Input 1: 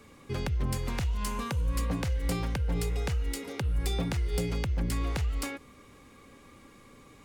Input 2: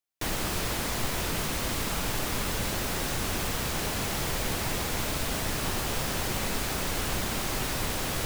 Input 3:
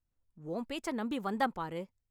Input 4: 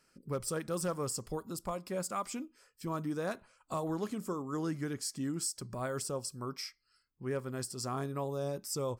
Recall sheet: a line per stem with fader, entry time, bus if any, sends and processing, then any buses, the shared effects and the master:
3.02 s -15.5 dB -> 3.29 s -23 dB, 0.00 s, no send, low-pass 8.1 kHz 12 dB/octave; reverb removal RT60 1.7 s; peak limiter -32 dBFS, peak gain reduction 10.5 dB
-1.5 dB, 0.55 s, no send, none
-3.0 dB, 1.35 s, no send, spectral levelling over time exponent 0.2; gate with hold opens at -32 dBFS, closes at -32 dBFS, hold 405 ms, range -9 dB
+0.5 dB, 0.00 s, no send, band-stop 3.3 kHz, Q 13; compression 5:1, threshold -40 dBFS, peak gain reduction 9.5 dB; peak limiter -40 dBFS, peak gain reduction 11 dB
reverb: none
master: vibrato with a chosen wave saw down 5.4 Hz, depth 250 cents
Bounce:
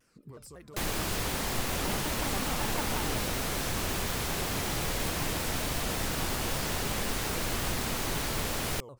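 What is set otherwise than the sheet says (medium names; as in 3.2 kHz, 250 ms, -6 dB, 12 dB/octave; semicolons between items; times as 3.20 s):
stem 1 -15.5 dB -> -22.0 dB; stem 3 -3.0 dB -> -10.5 dB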